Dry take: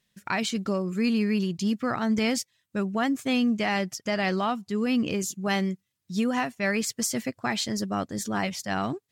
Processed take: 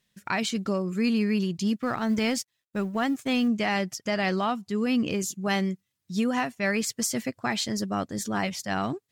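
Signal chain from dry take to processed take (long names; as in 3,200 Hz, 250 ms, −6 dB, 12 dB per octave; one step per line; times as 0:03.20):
0:01.76–0:03.48: mu-law and A-law mismatch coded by A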